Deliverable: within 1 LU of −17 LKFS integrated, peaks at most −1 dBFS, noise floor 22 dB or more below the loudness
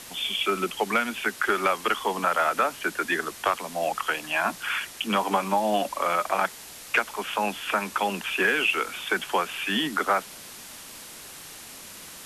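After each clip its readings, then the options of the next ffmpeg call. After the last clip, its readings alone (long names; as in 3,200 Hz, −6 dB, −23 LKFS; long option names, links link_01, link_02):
background noise floor −43 dBFS; target noise floor −48 dBFS; integrated loudness −26.0 LKFS; sample peak −11.5 dBFS; target loudness −17.0 LKFS
→ -af "afftdn=noise_reduction=6:noise_floor=-43"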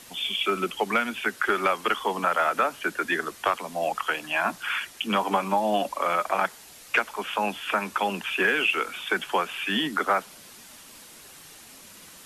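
background noise floor −48 dBFS; integrated loudness −26.0 LKFS; sample peak −11.5 dBFS; target loudness −17.0 LKFS
→ -af "volume=9dB"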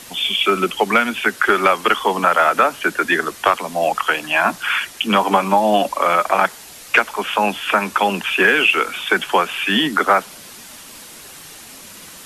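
integrated loudness −17.0 LKFS; sample peak −2.5 dBFS; background noise floor −39 dBFS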